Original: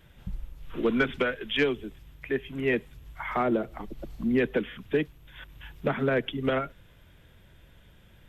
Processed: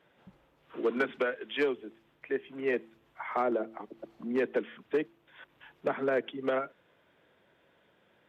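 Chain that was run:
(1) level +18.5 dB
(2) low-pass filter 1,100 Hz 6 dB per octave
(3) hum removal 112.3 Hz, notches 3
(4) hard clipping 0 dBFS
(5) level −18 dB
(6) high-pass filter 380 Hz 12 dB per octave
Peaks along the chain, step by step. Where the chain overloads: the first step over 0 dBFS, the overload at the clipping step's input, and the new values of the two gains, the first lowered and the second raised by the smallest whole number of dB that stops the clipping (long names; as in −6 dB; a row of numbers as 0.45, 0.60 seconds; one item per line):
+4.5, +4.0, +4.5, 0.0, −18.0, −15.0 dBFS
step 1, 4.5 dB
step 1 +13.5 dB, step 5 −13 dB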